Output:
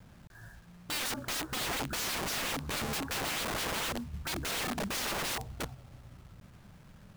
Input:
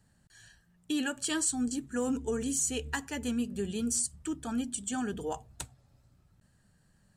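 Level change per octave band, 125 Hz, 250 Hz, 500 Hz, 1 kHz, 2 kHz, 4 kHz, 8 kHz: +3.5, -9.0, -3.5, +5.0, +5.0, +6.5, -5.0 dB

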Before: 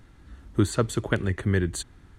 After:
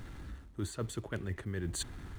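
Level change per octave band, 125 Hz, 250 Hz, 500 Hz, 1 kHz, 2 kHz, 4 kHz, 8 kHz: -12.0, -14.0, -14.0, -14.0, -13.5, -7.0, -6.5 dB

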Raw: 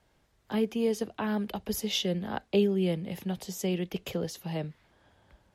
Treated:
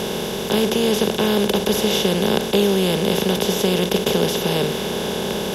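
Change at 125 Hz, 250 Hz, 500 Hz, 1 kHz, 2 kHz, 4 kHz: +10.0, +10.0, +13.0, +14.5, +15.0, +16.0 dB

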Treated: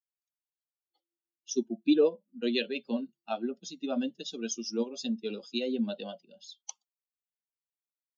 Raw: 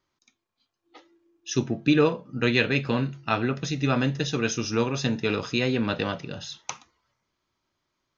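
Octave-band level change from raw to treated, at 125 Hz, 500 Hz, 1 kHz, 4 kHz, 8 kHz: under -20 dB, -4.5 dB, -13.0 dB, -7.0 dB, n/a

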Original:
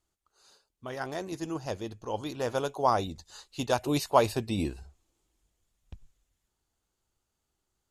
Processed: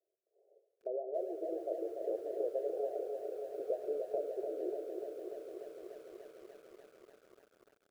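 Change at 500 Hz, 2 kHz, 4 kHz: -4.0 dB, under -25 dB, under -25 dB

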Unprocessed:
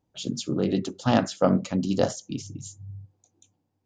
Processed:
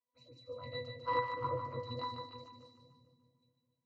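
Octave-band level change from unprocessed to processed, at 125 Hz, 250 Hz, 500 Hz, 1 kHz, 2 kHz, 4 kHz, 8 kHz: -17.0 dB, -28.0 dB, -14.0 dB, -5.5 dB, -8.0 dB, -12.0 dB, under -35 dB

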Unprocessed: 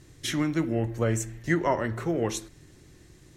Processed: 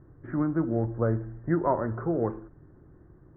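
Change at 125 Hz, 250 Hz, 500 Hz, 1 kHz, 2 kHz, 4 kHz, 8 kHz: 0.0 dB, 0.0 dB, 0.0 dB, 0.0 dB, -9.5 dB, under -40 dB, under -40 dB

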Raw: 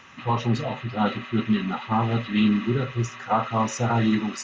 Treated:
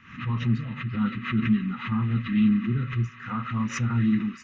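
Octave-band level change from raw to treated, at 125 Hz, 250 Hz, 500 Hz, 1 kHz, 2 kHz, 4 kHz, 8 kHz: +0.5 dB, -0.5 dB, -15.5 dB, -11.0 dB, -2.0 dB, -7.5 dB, n/a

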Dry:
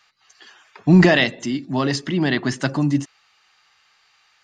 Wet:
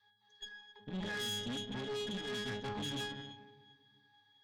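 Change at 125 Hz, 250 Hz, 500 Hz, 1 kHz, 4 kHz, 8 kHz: -25.0, -24.5, -19.0, -17.5, -11.0, -12.5 dB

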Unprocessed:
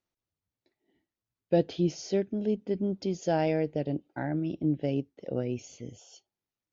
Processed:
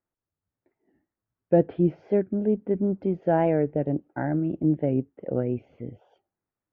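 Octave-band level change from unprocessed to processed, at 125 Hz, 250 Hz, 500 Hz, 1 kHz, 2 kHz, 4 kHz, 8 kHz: +5.0 dB, +5.0 dB, +5.0 dB, +5.0 dB, +2.0 dB, under -15 dB, n/a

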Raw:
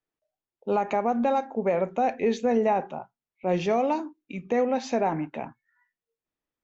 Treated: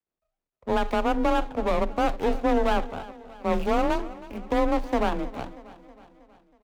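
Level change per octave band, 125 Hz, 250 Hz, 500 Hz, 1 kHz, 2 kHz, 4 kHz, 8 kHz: -0.5 dB, +1.0 dB, -1.0 dB, 0.0 dB, +4.0 dB, +5.5 dB, n/a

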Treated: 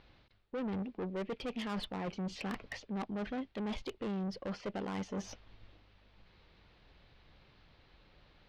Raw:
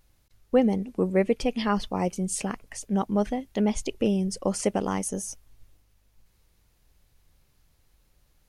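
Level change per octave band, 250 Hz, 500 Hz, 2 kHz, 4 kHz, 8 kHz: -12.5, -14.5, -7.5, -7.5, -22.5 dB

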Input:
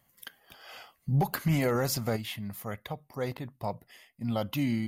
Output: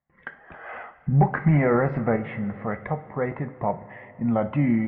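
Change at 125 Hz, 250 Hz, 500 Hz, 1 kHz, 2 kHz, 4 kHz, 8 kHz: +7.5 dB, +8.0 dB, +7.5 dB, +8.5 dB, +7.0 dB, under -15 dB, under -40 dB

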